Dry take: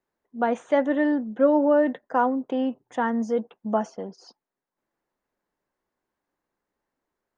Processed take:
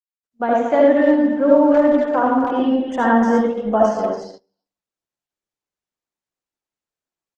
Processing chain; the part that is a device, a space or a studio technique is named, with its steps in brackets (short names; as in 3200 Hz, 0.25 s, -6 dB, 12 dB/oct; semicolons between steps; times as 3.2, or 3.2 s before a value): 0.66–1.23 de-hum 182.2 Hz, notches 10; speakerphone in a meeting room (reverb RT60 0.50 s, pre-delay 62 ms, DRR -2 dB; speakerphone echo 0.23 s, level -7 dB; AGC gain up to 8.5 dB; gate -29 dBFS, range -28 dB; gain -1 dB; Opus 16 kbps 48000 Hz)